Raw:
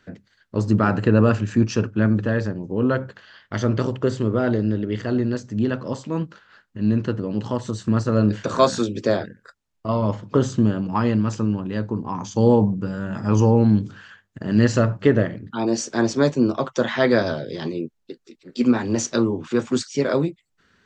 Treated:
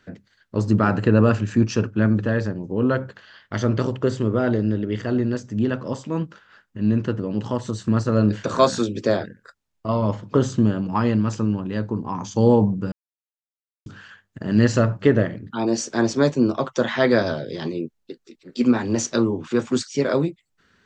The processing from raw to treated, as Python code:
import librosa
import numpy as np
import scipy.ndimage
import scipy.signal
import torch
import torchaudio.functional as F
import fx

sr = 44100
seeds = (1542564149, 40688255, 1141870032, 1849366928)

y = fx.notch(x, sr, hz=4200.0, q=12.0, at=(4.16, 7.6))
y = fx.edit(y, sr, fx.silence(start_s=12.92, length_s=0.94), tone=tone)